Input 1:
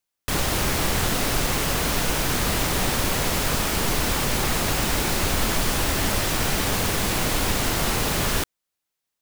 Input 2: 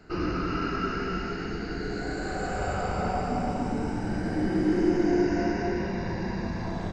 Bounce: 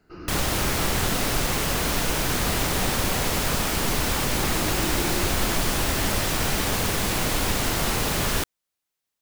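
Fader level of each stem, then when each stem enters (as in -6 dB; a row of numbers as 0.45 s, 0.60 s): -1.0 dB, -10.5 dB; 0.00 s, 0.00 s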